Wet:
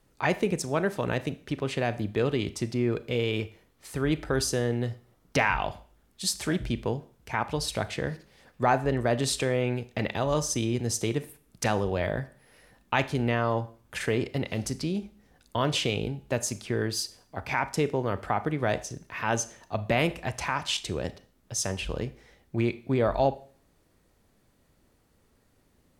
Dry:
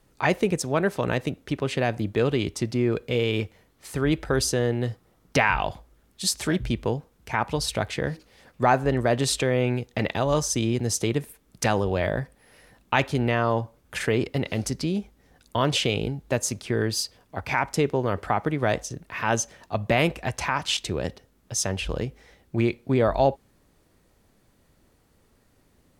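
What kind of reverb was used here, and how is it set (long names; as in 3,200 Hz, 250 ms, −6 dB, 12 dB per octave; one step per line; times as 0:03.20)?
four-comb reverb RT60 0.46 s, combs from 26 ms, DRR 14.5 dB
level −3.5 dB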